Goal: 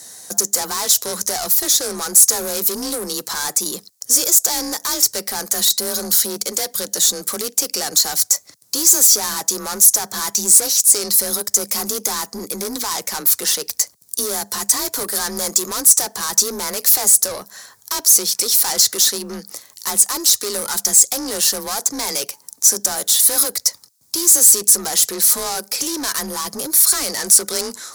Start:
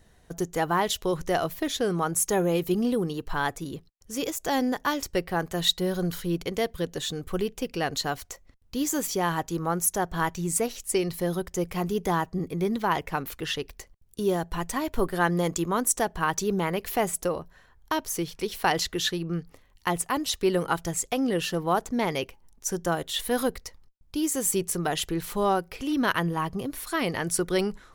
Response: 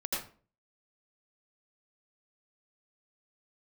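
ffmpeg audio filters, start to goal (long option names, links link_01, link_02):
-filter_complex "[0:a]highpass=86,asplit=2[link_01][link_02];[link_02]acompressor=threshold=-34dB:ratio=6,volume=-0.5dB[link_03];[link_01][link_03]amix=inputs=2:normalize=0,afreqshift=31,asplit=2[link_04][link_05];[link_05]highpass=frequency=720:poles=1,volume=29dB,asoftclip=type=tanh:threshold=-6.5dB[link_06];[link_04][link_06]amix=inputs=2:normalize=0,lowpass=frequency=4800:poles=1,volume=-6dB,aexciter=amount=13.1:drive=4.4:freq=4400,volume=-13dB"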